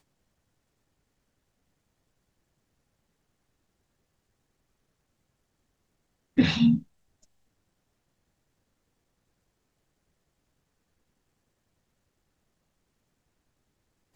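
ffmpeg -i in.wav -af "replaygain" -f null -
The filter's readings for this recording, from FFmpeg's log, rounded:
track_gain = +58.5 dB
track_peak = 0.268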